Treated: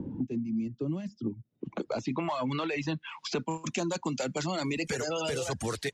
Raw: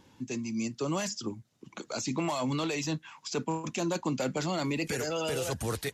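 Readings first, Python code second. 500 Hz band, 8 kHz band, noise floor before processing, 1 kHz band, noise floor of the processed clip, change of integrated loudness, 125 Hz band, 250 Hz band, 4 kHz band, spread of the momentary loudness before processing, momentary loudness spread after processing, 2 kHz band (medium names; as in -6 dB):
0.0 dB, -3.0 dB, -64 dBFS, 0.0 dB, -67 dBFS, -0.5 dB, -0.5 dB, +0.5 dB, -1.0 dB, 7 LU, 5 LU, +0.5 dB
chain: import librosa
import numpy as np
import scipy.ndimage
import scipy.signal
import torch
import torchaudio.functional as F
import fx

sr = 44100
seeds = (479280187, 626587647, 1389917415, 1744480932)

y = fx.dereverb_blind(x, sr, rt60_s=0.68)
y = fx.filter_sweep_lowpass(y, sr, from_hz=270.0, to_hz=7300.0, start_s=1.25, end_s=3.7, q=1.1)
y = fx.band_squash(y, sr, depth_pct=100)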